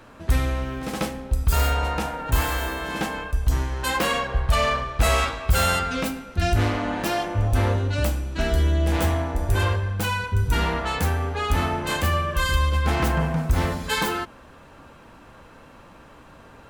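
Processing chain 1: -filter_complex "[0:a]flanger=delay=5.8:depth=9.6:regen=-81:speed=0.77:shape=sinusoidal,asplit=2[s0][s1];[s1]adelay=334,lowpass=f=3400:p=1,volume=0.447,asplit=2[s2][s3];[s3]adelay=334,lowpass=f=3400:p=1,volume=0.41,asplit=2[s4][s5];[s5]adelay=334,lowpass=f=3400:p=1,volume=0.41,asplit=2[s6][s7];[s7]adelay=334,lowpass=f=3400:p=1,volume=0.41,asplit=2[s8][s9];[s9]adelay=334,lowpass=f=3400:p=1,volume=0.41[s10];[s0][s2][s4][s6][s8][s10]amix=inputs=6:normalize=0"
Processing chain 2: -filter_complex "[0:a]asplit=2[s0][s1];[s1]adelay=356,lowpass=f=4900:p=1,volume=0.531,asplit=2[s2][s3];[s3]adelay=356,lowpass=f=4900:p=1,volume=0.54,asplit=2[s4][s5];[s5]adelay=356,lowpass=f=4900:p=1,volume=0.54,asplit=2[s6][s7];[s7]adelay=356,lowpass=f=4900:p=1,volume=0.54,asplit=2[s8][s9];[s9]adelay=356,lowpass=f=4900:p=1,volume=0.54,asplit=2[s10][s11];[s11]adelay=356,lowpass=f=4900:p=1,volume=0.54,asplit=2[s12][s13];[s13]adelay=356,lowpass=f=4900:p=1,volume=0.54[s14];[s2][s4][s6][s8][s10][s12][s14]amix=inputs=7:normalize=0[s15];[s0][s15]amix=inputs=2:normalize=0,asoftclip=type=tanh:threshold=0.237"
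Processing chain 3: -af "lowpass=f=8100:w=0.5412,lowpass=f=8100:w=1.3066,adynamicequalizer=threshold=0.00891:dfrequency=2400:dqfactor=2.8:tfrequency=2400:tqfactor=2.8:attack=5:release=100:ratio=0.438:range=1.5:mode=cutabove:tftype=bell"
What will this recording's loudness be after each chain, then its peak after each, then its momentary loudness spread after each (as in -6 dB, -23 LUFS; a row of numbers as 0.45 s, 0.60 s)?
-27.5 LUFS, -23.5 LUFS, -24.0 LUFS; -11.5 dBFS, -12.5 dBFS, -7.5 dBFS; 6 LU, 5 LU, 6 LU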